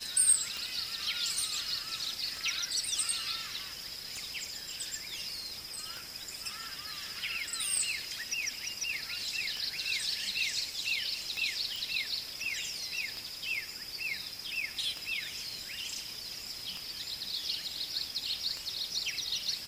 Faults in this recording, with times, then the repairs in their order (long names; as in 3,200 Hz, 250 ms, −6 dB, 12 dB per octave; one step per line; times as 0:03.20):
scratch tick 33 1/3 rpm
0:11.76: click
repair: click removal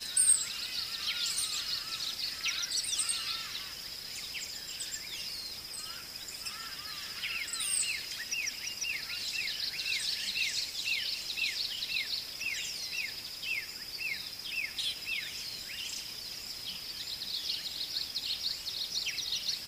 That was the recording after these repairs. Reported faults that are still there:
none of them is left